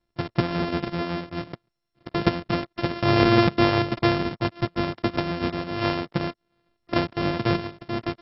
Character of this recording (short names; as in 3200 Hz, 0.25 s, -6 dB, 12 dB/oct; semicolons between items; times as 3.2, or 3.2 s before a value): a buzz of ramps at a fixed pitch in blocks of 128 samples; tremolo triangle 7.2 Hz, depth 40%; MP2